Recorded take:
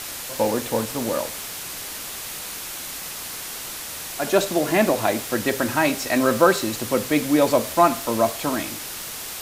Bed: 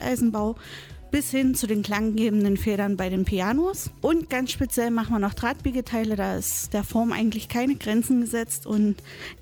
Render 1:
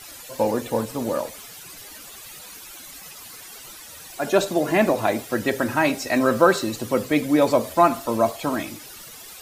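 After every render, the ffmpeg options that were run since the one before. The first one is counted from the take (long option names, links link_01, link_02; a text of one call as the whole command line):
ffmpeg -i in.wav -af "afftdn=noise_reduction=13:noise_floor=-34" out.wav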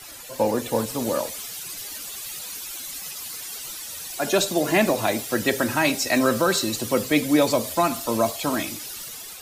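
ffmpeg -i in.wav -filter_complex "[0:a]acrossover=split=250|2800[link_01][link_02][link_03];[link_02]alimiter=limit=-11dB:level=0:latency=1:release=309[link_04];[link_03]dynaudnorm=framelen=260:gausssize=5:maxgain=7dB[link_05];[link_01][link_04][link_05]amix=inputs=3:normalize=0" out.wav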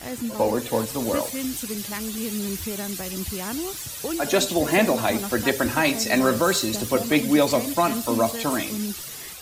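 ffmpeg -i in.wav -i bed.wav -filter_complex "[1:a]volume=-8dB[link_01];[0:a][link_01]amix=inputs=2:normalize=0" out.wav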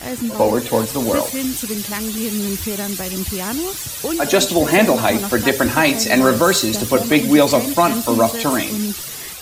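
ffmpeg -i in.wav -af "volume=6.5dB,alimiter=limit=-2dB:level=0:latency=1" out.wav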